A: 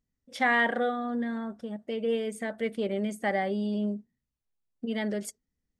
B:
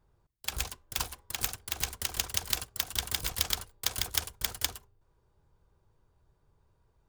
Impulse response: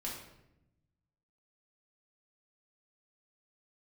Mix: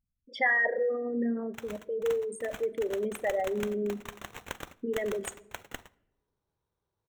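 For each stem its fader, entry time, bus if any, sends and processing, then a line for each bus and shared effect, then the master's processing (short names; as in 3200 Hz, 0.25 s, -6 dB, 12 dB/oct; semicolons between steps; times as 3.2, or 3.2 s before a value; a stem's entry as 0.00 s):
-2.0 dB, 0.00 s, send -12.5 dB, formant sharpening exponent 3
-11.0 dB, 1.10 s, send -19.5 dB, HPF 180 Hz 6 dB/oct; sample-rate reducer 4800 Hz, jitter 0%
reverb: on, RT60 0.85 s, pre-delay 4 ms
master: dry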